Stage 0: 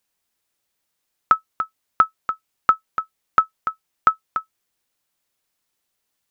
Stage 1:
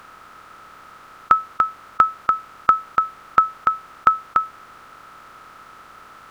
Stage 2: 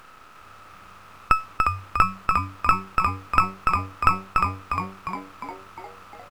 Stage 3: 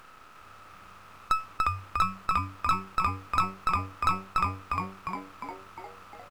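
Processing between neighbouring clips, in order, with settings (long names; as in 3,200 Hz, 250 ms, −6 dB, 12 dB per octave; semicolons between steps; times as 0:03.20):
compressor on every frequency bin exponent 0.4
gain on one half-wave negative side −12 dB; on a send: echo with shifted repeats 354 ms, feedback 58%, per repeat −96 Hz, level −5 dB; on the sum: level −1 dB
soft clipping −11.5 dBFS, distortion −12 dB; level −3.5 dB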